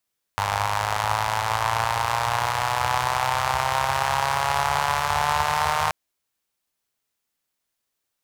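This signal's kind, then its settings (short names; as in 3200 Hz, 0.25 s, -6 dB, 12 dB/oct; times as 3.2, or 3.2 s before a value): four-cylinder engine model, changing speed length 5.53 s, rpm 3000, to 4600, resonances 91/890 Hz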